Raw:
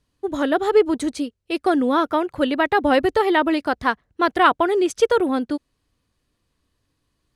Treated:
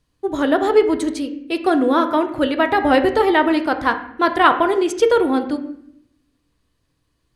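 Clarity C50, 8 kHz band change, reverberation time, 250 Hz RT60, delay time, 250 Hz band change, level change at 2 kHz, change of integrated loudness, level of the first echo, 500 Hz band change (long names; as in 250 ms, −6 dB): 11.0 dB, +1.5 dB, 0.70 s, 1.1 s, no echo audible, +3.0 dB, +2.5 dB, +2.5 dB, no echo audible, +2.5 dB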